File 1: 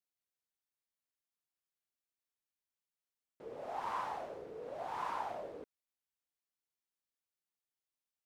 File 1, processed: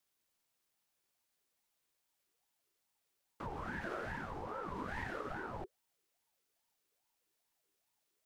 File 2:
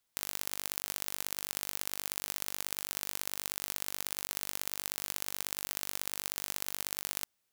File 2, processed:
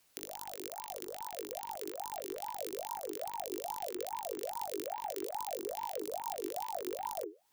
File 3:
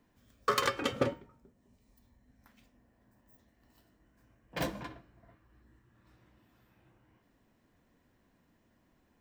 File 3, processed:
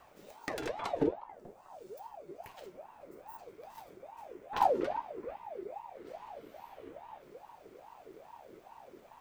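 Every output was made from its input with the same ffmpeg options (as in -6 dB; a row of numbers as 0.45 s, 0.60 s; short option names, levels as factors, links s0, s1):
-filter_complex "[0:a]acrossover=split=150[s0][s1];[s1]acompressor=threshold=0.00355:ratio=16[s2];[s0][s2]amix=inputs=2:normalize=0,asubboost=boost=4:cutoff=140,afreqshift=-46,aeval=exprs='val(0)*sin(2*PI*650*n/s+650*0.45/2.4*sin(2*PI*2.4*n/s))':c=same,volume=4.73"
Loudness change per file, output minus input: -1.0 LU, -4.5 LU, -4.0 LU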